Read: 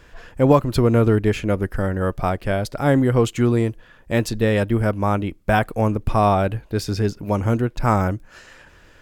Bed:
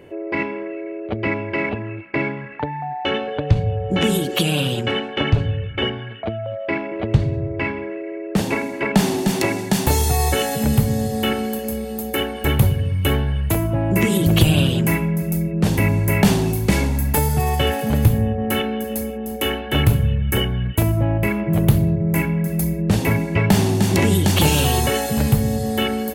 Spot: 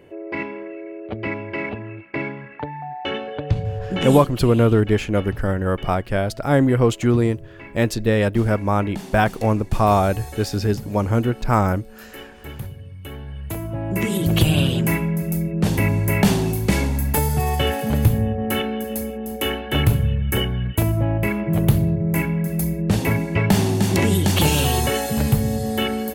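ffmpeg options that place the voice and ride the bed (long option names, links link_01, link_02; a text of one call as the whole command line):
ffmpeg -i stem1.wav -i stem2.wav -filter_complex "[0:a]adelay=3650,volume=0.5dB[link_01];[1:a]volume=11dB,afade=type=out:start_time=4.12:duration=0.23:silence=0.237137,afade=type=in:start_time=13.1:duration=1.5:silence=0.16788[link_02];[link_01][link_02]amix=inputs=2:normalize=0" out.wav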